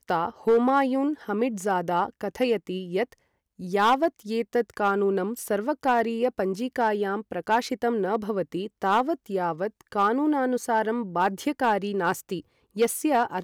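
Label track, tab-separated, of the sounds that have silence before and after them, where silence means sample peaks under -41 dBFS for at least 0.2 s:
3.590000	12.400000	sound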